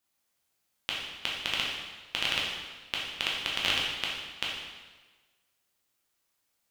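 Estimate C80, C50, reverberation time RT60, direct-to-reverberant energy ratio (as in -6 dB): 3.5 dB, 0.5 dB, 1.3 s, -4.5 dB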